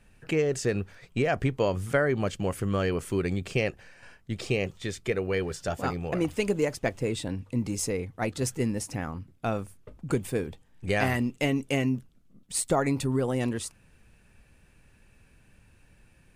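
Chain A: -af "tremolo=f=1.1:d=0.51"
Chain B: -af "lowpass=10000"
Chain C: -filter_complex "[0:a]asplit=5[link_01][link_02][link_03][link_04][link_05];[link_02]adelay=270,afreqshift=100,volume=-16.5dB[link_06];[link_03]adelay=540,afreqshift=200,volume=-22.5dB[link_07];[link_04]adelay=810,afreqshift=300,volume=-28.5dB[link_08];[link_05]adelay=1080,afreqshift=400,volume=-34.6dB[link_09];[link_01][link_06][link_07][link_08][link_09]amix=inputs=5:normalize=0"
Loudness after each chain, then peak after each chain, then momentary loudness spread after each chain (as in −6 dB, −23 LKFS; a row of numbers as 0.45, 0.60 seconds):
−31.5, −29.5, −29.0 LKFS; −11.5, −10.5, −10.5 dBFS; 10, 8, 11 LU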